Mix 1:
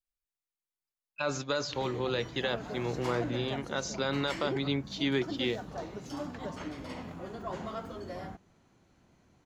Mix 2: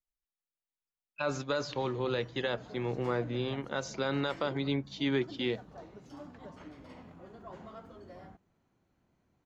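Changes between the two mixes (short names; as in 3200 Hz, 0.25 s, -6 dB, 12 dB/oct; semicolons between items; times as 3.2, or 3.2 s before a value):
background -9.0 dB; master: add high shelf 3600 Hz -7.5 dB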